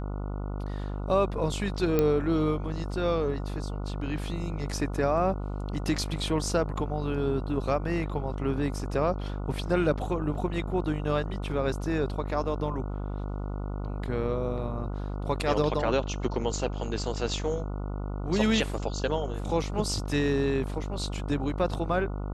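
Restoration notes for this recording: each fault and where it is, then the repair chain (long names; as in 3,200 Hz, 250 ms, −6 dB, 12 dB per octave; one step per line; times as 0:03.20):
mains buzz 50 Hz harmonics 29 −33 dBFS
0:01.99: click −12 dBFS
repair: click removal
hum removal 50 Hz, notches 29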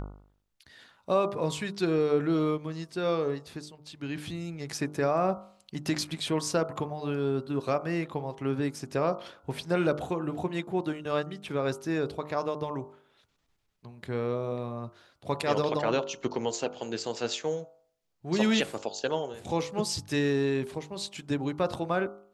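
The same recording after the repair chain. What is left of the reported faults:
0:01.99: click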